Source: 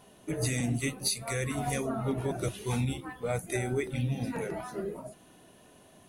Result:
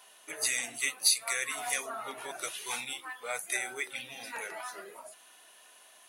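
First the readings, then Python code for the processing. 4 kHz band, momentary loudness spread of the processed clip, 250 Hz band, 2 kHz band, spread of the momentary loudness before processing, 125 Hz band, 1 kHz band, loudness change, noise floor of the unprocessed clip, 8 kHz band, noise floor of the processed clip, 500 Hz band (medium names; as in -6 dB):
+5.5 dB, 16 LU, -20.5 dB, +5.0 dB, 7 LU, -33.0 dB, -1.0 dB, 0.0 dB, -57 dBFS, +5.5 dB, -58 dBFS, -10.0 dB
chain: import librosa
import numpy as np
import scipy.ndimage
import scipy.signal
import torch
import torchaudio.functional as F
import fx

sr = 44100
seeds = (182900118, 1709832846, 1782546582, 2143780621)

y = scipy.signal.sosfilt(scipy.signal.butter(2, 1200.0, 'highpass', fs=sr, output='sos'), x)
y = y * 10.0 ** (5.5 / 20.0)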